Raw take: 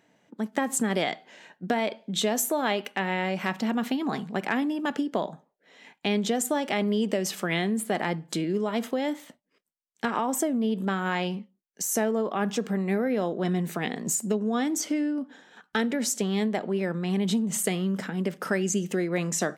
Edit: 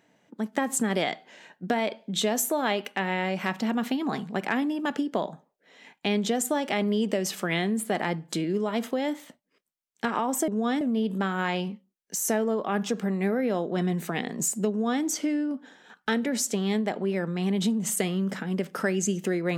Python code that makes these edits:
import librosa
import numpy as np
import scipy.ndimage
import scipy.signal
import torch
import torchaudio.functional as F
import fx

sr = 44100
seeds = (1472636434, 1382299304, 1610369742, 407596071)

y = fx.edit(x, sr, fx.duplicate(start_s=14.37, length_s=0.33, to_s=10.48), tone=tone)